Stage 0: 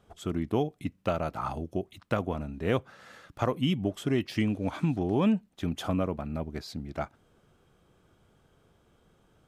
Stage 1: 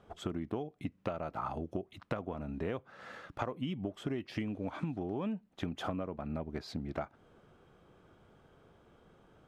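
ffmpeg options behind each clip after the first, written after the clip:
ffmpeg -i in.wav -af "lowpass=frequency=1900:poles=1,lowshelf=frequency=190:gain=-6.5,acompressor=threshold=-38dB:ratio=10,volume=5dB" out.wav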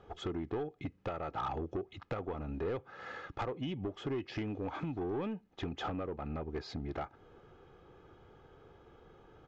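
ffmpeg -i in.wav -af "aecho=1:1:2.4:0.44,aresample=16000,asoftclip=type=tanh:threshold=-33dB,aresample=44100,highshelf=frequency=6300:gain=-10,volume=3dB" out.wav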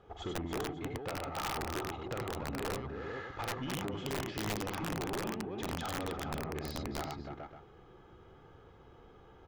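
ffmpeg -i in.wav -filter_complex "[0:a]asplit=2[link_01][link_02];[link_02]aecho=0:1:47|94|95|293|421|551:0.398|0.668|0.562|0.473|0.501|0.224[link_03];[link_01][link_03]amix=inputs=2:normalize=0,aeval=exprs='(tanh(20*val(0)+0.5)-tanh(0.5))/20':channel_layout=same,aeval=exprs='(mod(26.6*val(0)+1,2)-1)/26.6':channel_layout=same" out.wav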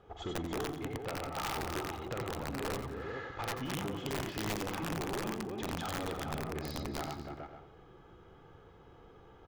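ffmpeg -i in.wav -af "aecho=1:1:88|176|264|352|440:0.251|0.113|0.0509|0.0229|0.0103" out.wav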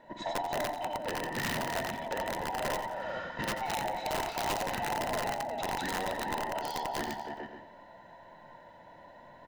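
ffmpeg -i in.wav -af "afftfilt=real='real(if(between(b,1,1008),(2*floor((b-1)/48)+1)*48-b,b),0)':imag='imag(if(between(b,1,1008),(2*floor((b-1)/48)+1)*48-b,b),0)*if(between(b,1,1008),-1,1)':win_size=2048:overlap=0.75,volume=3.5dB" out.wav

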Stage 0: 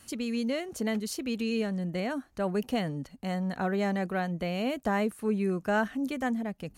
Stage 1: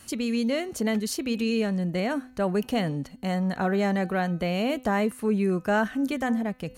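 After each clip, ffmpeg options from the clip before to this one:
ffmpeg -i in.wav -filter_complex "[0:a]asplit=2[link_01][link_02];[link_02]alimiter=limit=-23dB:level=0:latency=1,volume=-2dB[link_03];[link_01][link_03]amix=inputs=2:normalize=0,bandreject=frequency=253.8:width_type=h:width=4,bandreject=frequency=507.6:width_type=h:width=4,bandreject=frequency=761.4:width_type=h:width=4,bandreject=frequency=1015.2:width_type=h:width=4,bandreject=frequency=1269:width_type=h:width=4,bandreject=frequency=1522.8:width_type=h:width=4,bandreject=frequency=1776.6:width_type=h:width=4,bandreject=frequency=2030.4:width_type=h:width=4,bandreject=frequency=2284.2:width_type=h:width=4,bandreject=frequency=2538:width_type=h:width=4,bandreject=frequency=2791.8:width_type=h:width=4,bandreject=frequency=3045.6:width_type=h:width=4,bandreject=frequency=3299.4:width_type=h:width=4,bandreject=frequency=3553.2:width_type=h:width=4,bandreject=frequency=3807:width_type=h:width=4,bandreject=frequency=4060.8:width_type=h:width=4,bandreject=frequency=4314.6:width_type=h:width=4" out.wav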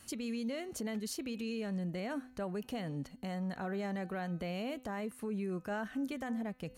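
ffmpeg -i in.wav -af "alimiter=limit=-23dB:level=0:latency=1:release=194,volume=-7dB" out.wav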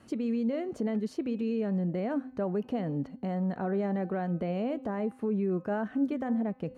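ffmpeg -i in.wav -af "bandpass=frequency=340:width_type=q:width=0.56:csg=0,bandreject=frequency=266:width_type=h:width=4,bandreject=frequency=532:width_type=h:width=4,bandreject=frequency=798:width_type=h:width=4,bandreject=frequency=1064:width_type=h:width=4,volume=9dB" out.wav

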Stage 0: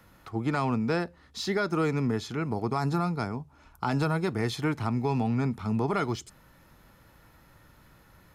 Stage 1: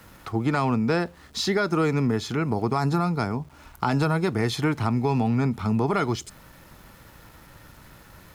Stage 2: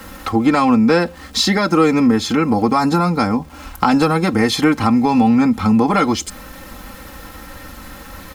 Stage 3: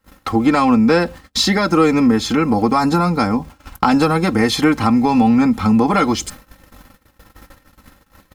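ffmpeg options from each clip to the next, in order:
ffmpeg -i in.wav -af "acompressor=threshold=-35dB:ratio=1.5,aeval=exprs='val(0)*gte(abs(val(0)),0.00112)':channel_layout=same,volume=8.5dB" out.wav
ffmpeg -i in.wav -filter_complex "[0:a]aecho=1:1:3.8:0.8,asplit=2[link_01][link_02];[link_02]acompressor=threshold=-30dB:ratio=6,volume=0.5dB[link_03];[link_01][link_03]amix=inputs=2:normalize=0,volume=5.5dB" out.wav
ffmpeg -i in.wav -af "aeval=exprs='val(0)+0.00891*(sin(2*PI*50*n/s)+sin(2*PI*2*50*n/s)/2+sin(2*PI*3*50*n/s)/3+sin(2*PI*4*50*n/s)/4+sin(2*PI*5*50*n/s)/5)':channel_layout=same,agate=range=-34dB:threshold=-31dB:ratio=16:detection=peak" out.wav

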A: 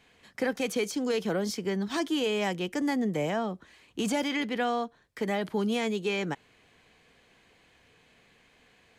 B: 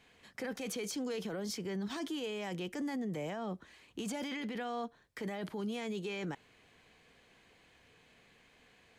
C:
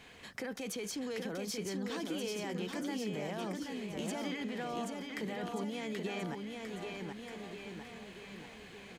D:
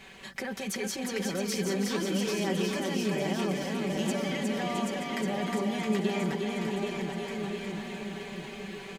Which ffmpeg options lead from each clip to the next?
ffmpeg -i in.wav -af "alimiter=level_in=5dB:limit=-24dB:level=0:latency=1:release=10,volume=-5dB,volume=-2.5dB" out.wav
ffmpeg -i in.wav -filter_complex "[0:a]acompressor=threshold=-55dB:ratio=2,asplit=2[link_01][link_02];[link_02]aecho=0:1:780|1482|2114|2682|3194:0.631|0.398|0.251|0.158|0.1[link_03];[link_01][link_03]amix=inputs=2:normalize=0,volume=9dB" out.wav
ffmpeg -i in.wav -af "aecho=1:1:5.2:0.71,aecho=1:1:360|666|926.1|1147|1335:0.631|0.398|0.251|0.158|0.1,volume=4dB" out.wav

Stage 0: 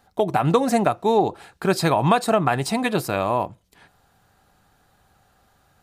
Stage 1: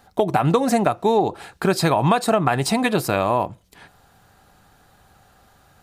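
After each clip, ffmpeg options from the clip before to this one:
ffmpeg -i in.wav -af "acompressor=threshold=-24dB:ratio=2,volume=6dB" out.wav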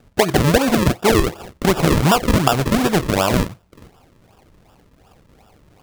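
ffmpeg -i in.wav -af "acrusher=samples=41:mix=1:aa=0.000001:lfo=1:lforange=41:lforate=2.7,volume=3dB" out.wav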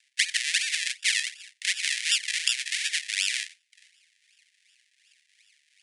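ffmpeg -i in.wav -af "asuperpass=centerf=4600:order=20:qfactor=0.54" out.wav

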